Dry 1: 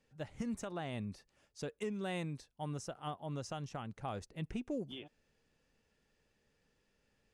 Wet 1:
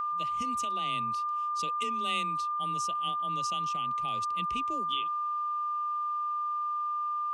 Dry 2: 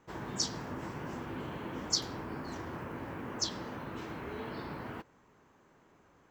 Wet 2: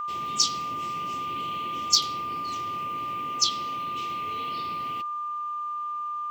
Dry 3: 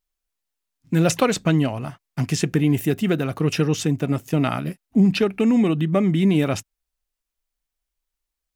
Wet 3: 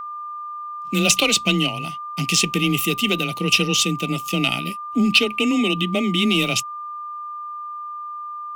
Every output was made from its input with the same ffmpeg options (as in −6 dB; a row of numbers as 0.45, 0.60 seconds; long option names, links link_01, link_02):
-filter_complex "[0:a]highshelf=frequency=2000:width_type=q:width=3:gain=11.5,asplit=2[link_01][link_02];[link_02]asoftclip=type=hard:threshold=-11dB,volume=-3.5dB[link_03];[link_01][link_03]amix=inputs=2:normalize=0,afreqshift=21,aeval=exprs='val(0)+0.0794*sin(2*PI*1200*n/s)':channel_layout=same,asuperstop=centerf=1700:order=8:qfactor=7.9,volume=-7dB"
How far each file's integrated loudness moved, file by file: +11.5, +10.0, +1.5 LU